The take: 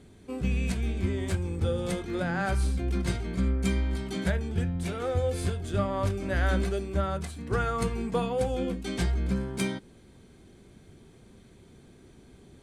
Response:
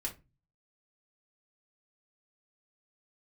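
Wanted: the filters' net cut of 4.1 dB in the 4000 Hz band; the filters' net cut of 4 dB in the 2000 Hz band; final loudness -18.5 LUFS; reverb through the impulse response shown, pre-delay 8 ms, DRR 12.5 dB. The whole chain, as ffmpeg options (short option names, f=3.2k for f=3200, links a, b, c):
-filter_complex "[0:a]equalizer=f=2k:t=o:g=-5,equalizer=f=4k:t=o:g=-3.5,asplit=2[a][b];[1:a]atrim=start_sample=2205,adelay=8[c];[b][c]afir=irnorm=-1:irlink=0,volume=-13dB[d];[a][d]amix=inputs=2:normalize=0,volume=11.5dB"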